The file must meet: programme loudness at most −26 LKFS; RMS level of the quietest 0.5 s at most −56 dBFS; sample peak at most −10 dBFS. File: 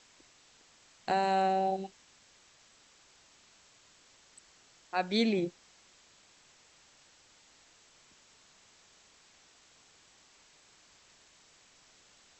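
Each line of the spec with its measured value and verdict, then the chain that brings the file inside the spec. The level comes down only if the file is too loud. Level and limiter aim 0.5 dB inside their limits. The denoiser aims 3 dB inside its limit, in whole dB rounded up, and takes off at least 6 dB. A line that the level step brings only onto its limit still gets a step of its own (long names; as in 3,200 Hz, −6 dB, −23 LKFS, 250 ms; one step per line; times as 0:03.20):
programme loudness −31.0 LKFS: in spec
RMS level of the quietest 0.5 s −62 dBFS: in spec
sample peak −16.5 dBFS: in spec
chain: no processing needed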